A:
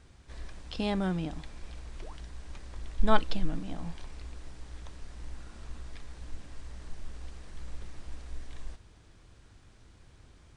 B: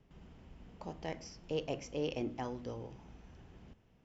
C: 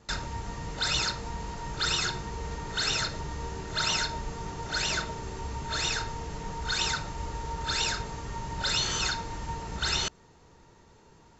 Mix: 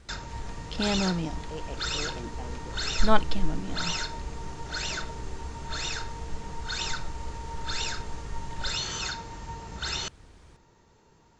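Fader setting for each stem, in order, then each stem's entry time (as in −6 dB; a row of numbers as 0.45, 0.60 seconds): +2.5, −4.0, −3.5 decibels; 0.00, 0.00, 0.00 seconds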